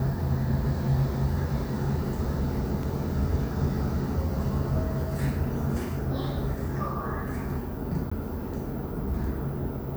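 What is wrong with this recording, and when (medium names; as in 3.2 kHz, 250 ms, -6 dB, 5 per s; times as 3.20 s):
2.83 s: dropout 2.6 ms
8.10–8.12 s: dropout 15 ms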